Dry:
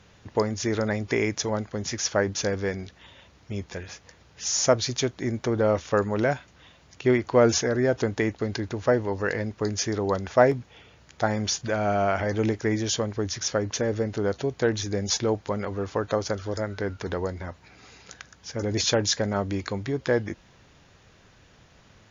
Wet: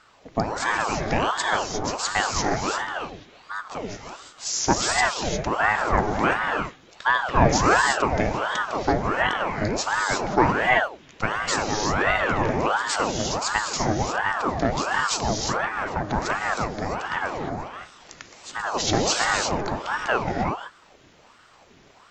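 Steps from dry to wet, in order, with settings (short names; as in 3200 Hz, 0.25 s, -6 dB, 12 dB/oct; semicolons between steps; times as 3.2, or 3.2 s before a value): non-linear reverb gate 0.38 s rising, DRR 0 dB; ring modulator with a swept carrier 790 Hz, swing 75%, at 1.4 Hz; gain +2 dB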